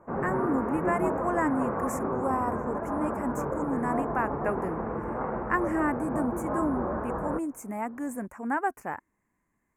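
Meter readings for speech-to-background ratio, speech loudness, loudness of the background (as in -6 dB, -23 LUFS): 0.0 dB, -32.0 LUFS, -32.0 LUFS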